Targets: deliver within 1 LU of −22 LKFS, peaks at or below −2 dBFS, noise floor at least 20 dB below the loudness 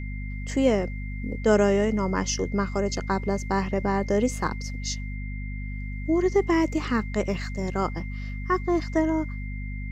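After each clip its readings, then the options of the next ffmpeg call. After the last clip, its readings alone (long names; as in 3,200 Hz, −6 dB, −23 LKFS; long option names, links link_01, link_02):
mains hum 50 Hz; hum harmonics up to 250 Hz; level of the hum −30 dBFS; interfering tone 2,100 Hz; level of the tone −42 dBFS; integrated loudness −26.5 LKFS; sample peak −9.0 dBFS; target loudness −22.0 LKFS
→ -af "bandreject=frequency=50:width_type=h:width=6,bandreject=frequency=100:width_type=h:width=6,bandreject=frequency=150:width_type=h:width=6,bandreject=frequency=200:width_type=h:width=6,bandreject=frequency=250:width_type=h:width=6"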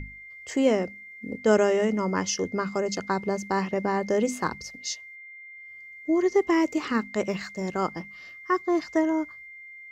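mains hum none found; interfering tone 2,100 Hz; level of the tone −42 dBFS
→ -af "bandreject=frequency=2100:width=30"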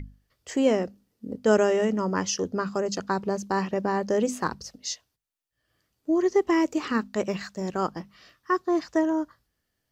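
interfering tone none found; integrated loudness −26.5 LKFS; sample peak −10.0 dBFS; target loudness −22.0 LKFS
→ -af "volume=4.5dB"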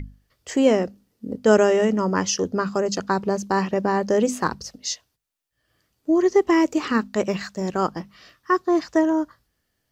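integrated loudness −22.0 LKFS; sample peak −5.5 dBFS; background noise floor −75 dBFS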